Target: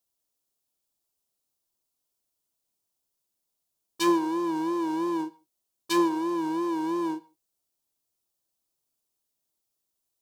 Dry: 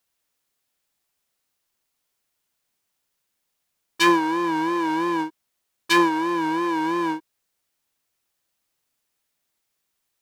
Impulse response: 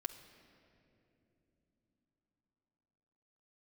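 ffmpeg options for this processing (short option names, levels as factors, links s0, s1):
-filter_complex "[0:a]equalizer=f=1900:w=0.86:g=-13.5,asplit=2[s0][s1];[1:a]atrim=start_sample=2205,afade=t=out:st=0.21:d=0.01,atrim=end_sample=9702,lowshelf=f=170:g=-8.5[s2];[s1][s2]afir=irnorm=-1:irlink=0,volume=1.06[s3];[s0][s3]amix=inputs=2:normalize=0,volume=0.398"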